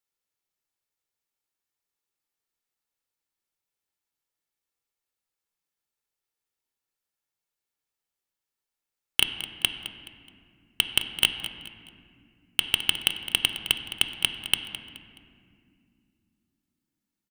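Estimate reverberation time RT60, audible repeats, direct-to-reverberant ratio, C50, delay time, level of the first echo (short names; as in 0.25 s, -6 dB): 2.3 s, 3, 6.5 dB, 7.5 dB, 0.212 s, -14.0 dB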